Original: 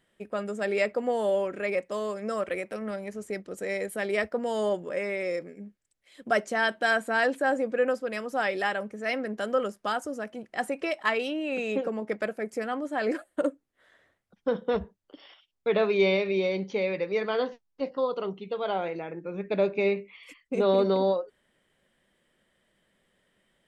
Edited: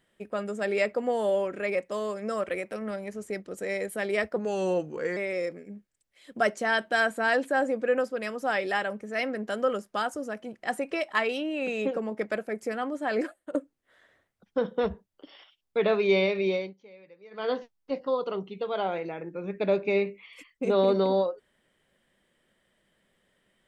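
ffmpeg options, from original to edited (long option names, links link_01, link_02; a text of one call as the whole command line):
ffmpeg -i in.wav -filter_complex "[0:a]asplit=6[link_01][link_02][link_03][link_04][link_05][link_06];[link_01]atrim=end=4.364[link_07];[link_02]atrim=start=4.36:end=5.07,asetpts=PTS-STARTPTS,asetrate=38808,aresample=44100[link_08];[link_03]atrim=start=5.066:end=13.45,asetpts=PTS-STARTPTS,afade=type=out:start_time=8.044:duration=0.34:silence=0.133352[link_09];[link_04]atrim=start=13.45:end=16.64,asetpts=PTS-STARTPTS,afade=type=in:duration=0.004:curve=hsin:silence=0.133352,afade=type=out:start_time=2.98:duration=0.21:silence=0.0707946[link_10];[link_05]atrim=start=16.64:end=17.21,asetpts=PTS-STARTPTS,volume=-23dB[link_11];[link_06]atrim=start=17.21,asetpts=PTS-STARTPTS,afade=type=in:duration=0.21:silence=0.0707946[link_12];[link_07][link_08]acrossfade=duration=0.004:curve1=hsin:curve2=hsin[link_13];[link_09][link_10][link_11][link_12]concat=n=4:v=0:a=1[link_14];[link_13][link_14]acrossfade=duration=0.004:curve1=hsin:curve2=hsin" out.wav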